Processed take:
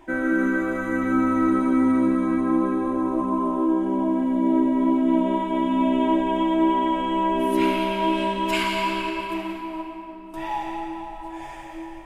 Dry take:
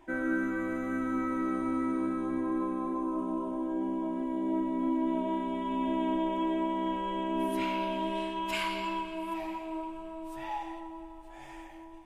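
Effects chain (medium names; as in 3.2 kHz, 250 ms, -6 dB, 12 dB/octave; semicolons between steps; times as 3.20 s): 9.10–10.34 s: gate -35 dBFS, range -24 dB; on a send: reverberation RT60 3.4 s, pre-delay 101 ms, DRR 2 dB; on the sum: trim +7.5 dB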